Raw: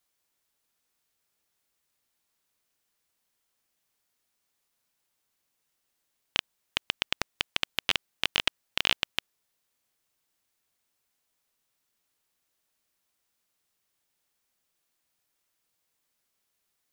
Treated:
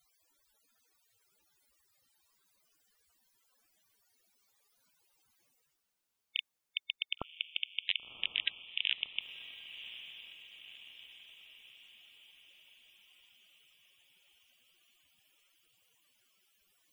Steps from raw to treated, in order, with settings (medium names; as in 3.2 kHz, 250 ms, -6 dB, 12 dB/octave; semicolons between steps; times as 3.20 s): reverse; upward compressor, threshold -44 dBFS; reverse; loudest bins only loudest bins 64; echo that smears into a reverb 1060 ms, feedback 56%, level -12.5 dB; trim -5 dB